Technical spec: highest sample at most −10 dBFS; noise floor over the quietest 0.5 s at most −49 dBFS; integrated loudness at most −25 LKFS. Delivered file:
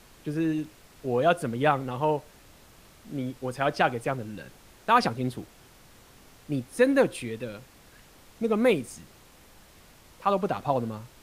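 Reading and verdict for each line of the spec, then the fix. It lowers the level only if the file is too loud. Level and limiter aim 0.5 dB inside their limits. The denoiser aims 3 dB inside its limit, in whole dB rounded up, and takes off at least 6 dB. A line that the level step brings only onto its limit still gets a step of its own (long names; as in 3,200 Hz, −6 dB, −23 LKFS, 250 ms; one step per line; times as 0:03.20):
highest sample −8.5 dBFS: out of spec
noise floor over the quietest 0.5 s −54 dBFS: in spec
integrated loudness −27.5 LKFS: in spec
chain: brickwall limiter −10.5 dBFS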